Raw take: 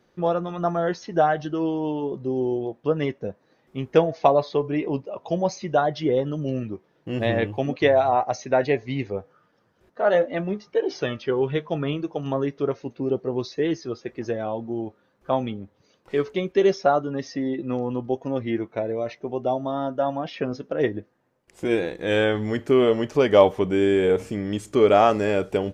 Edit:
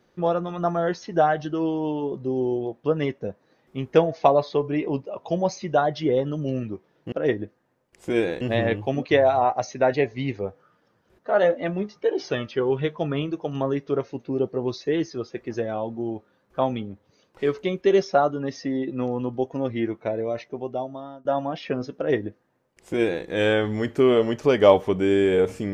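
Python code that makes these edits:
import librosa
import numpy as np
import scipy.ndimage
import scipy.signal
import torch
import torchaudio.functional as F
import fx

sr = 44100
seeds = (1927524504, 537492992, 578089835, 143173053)

y = fx.edit(x, sr, fx.fade_out_to(start_s=19.08, length_s=0.88, floor_db=-22.0),
    fx.duplicate(start_s=20.67, length_s=1.29, to_s=7.12), tone=tone)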